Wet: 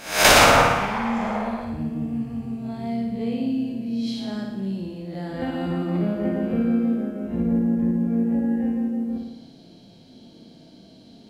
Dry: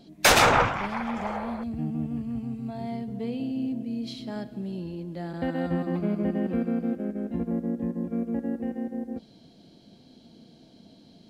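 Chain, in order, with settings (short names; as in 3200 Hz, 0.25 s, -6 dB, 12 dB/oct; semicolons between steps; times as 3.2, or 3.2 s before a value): spectral swells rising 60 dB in 0.48 s; flutter echo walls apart 9.7 m, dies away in 0.89 s; gain +1 dB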